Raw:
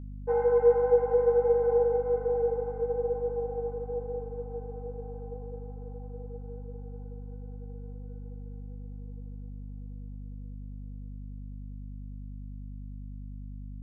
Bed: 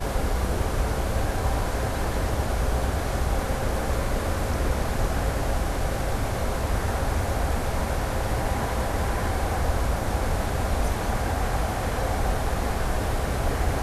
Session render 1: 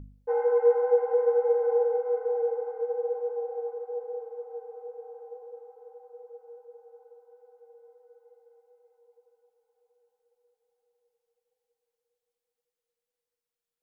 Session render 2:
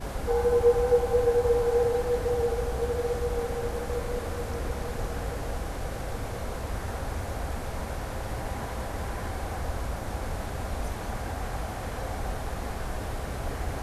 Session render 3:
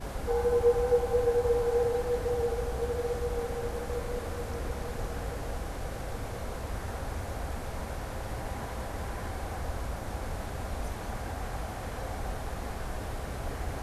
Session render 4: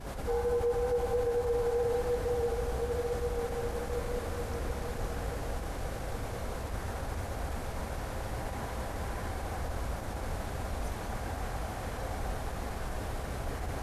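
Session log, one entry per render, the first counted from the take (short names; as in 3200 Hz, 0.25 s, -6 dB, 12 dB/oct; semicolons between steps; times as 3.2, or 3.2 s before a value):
de-hum 50 Hz, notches 5
add bed -7.5 dB
gain -3 dB
limiter -22.5 dBFS, peak gain reduction 8 dB; attack slew limiter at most 110 dB/s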